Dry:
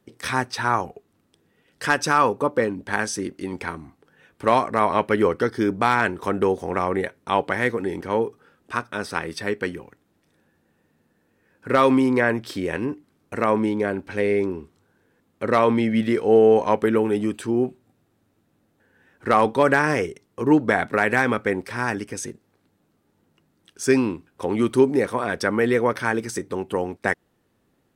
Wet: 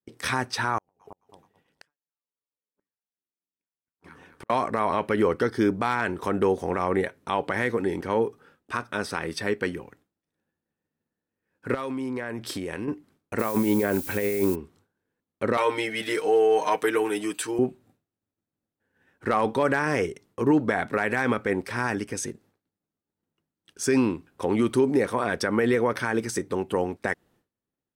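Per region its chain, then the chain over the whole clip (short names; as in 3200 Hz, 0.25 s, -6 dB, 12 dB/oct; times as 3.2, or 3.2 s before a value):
0.78–4.5 echo with dull and thin repeats by turns 0.108 s, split 990 Hz, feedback 61%, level -7 dB + compressor 12:1, threshold -33 dBFS + flipped gate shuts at -29 dBFS, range -36 dB
11.74–12.88 compressor 12:1, threshold -27 dBFS + dynamic EQ 9700 Hz, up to +6 dB, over -56 dBFS, Q 1
13.38–14.54 negative-ratio compressor -23 dBFS, ratio -0.5 + added noise violet -37 dBFS
15.57–17.59 HPF 800 Hz 6 dB/oct + high shelf 5600 Hz +8.5 dB + comb 6.5 ms, depth 91%
whole clip: expander -52 dBFS; limiter -12.5 dBFS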